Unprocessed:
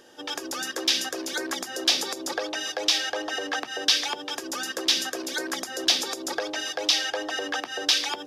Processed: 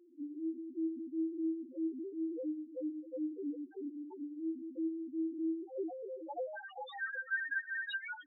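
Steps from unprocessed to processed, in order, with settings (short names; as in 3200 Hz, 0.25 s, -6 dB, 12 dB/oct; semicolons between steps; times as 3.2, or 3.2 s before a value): band-pass sweep 300 Hz -> 1700 Hz, 5.39–7.42; loudest bins only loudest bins 1; gain +7 dB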